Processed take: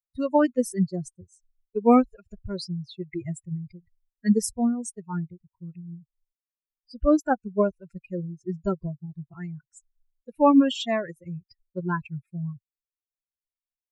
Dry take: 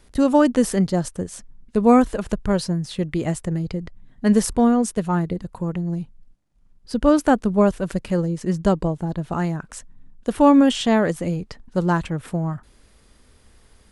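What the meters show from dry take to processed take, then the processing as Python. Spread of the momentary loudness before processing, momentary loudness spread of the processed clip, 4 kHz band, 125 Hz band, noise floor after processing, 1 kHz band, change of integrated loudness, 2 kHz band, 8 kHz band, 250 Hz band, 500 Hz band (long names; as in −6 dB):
14 LU, 22 LU, −5.5 dB, −8.5 dB, below −85 dBFS, −5.0 dB, −5.0 dB, −6.5 dB, −6.5 dB, −6.0 dB, −5.5 dB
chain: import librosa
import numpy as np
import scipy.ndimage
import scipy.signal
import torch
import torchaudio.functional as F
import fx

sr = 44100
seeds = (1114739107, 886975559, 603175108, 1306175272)

y = fx.bin_expand(x, sr, power=3.0)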